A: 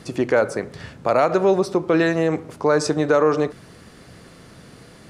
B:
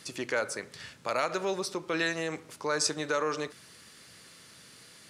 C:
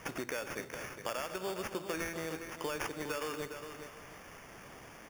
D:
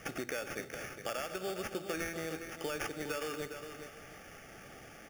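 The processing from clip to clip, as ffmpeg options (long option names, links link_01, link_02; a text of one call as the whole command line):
ffmpeg -i in.wav -af "highpass=75,tiltshelf=frequency=1400:gain=-9,bandreject=frequency=720:width=12,volume=-7.5dB" out.wav
ffmpeg -i in.wav -filter_complex "[0:a]acompressor=threshold=-36dB:ratio=6,acrusher=samples=11:mix=1:aa=0.000001,asplit=2[link_01][link_02];[link_02]aecho=0:1:237|410|717:0.15|0.355|0.119[link_03];[link_01][link_03]amix=inputs=2:normalize=0,volume=1dB" out.wav
ffmpeg -i in.wav -af "asuperstop=centerf=1000:order=8:qfactor=4.2" out.wav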